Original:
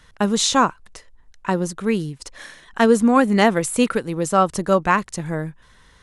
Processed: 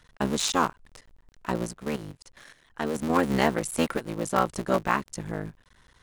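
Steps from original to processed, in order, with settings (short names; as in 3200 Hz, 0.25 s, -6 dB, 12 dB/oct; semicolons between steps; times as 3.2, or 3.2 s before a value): cycle switcher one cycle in 3, muted; 1.73–3.1 level quantiser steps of 11 dB; gain -6 dB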